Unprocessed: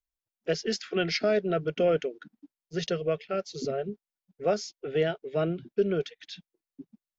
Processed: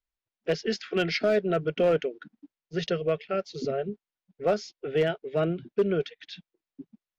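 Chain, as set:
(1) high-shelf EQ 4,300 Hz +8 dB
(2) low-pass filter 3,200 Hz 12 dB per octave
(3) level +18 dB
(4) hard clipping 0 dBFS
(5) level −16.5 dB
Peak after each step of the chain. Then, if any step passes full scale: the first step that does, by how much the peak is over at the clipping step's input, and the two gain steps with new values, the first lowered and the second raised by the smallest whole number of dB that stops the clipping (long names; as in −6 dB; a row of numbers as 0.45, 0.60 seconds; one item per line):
−13.5, −14.0, +4.0, 0.0, −16.5 dBFS
step 3, 4.0 dB
step 3 +14 dB, step 5 −12.5 dB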